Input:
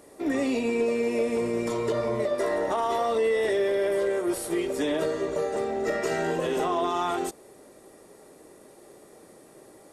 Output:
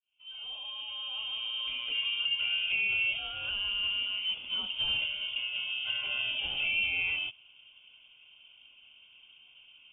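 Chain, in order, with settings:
fade in at the beginning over 2.02 s
phaser with its sweep stopped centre 430 Hz, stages 6
voice inversion scrambler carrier 3,400 Hz
level −1.5 dB

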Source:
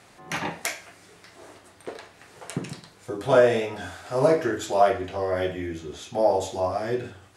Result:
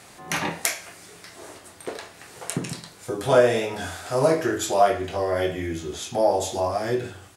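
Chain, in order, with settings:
high-shelf EQ 6,400 Hz +9.5 dB
double-tracking delay 24 ms −11.5 dB
in parallel at −3 dB: downward compressor, threshold −29 dBFS, peak gain reduction 17 dB
on the sum: level −1 dB

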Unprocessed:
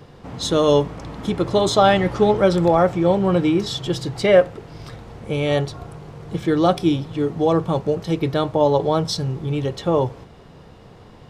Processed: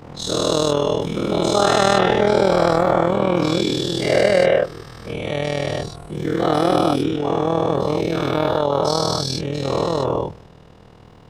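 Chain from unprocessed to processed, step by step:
every bin's largest magnitude spread in time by 480 ms
amplitude modulation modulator 40 Hz, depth 60%
level −4 dB

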